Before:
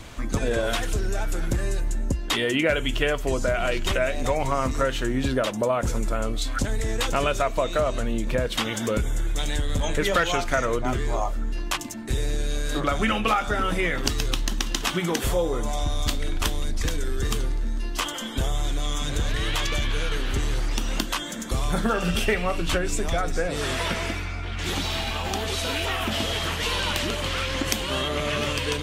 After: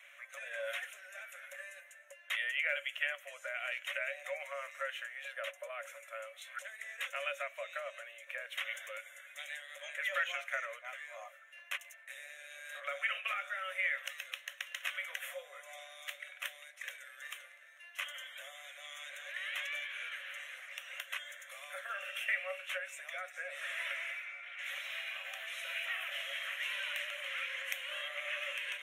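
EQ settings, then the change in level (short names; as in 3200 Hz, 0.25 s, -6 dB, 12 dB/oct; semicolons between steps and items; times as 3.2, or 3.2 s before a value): rippled Chebyshev high-pass 540 Hz, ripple 9 dB; fixed phaser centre 2000 Hz, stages 4; notch 7700 Hz, Q 9.7; -4.5 dB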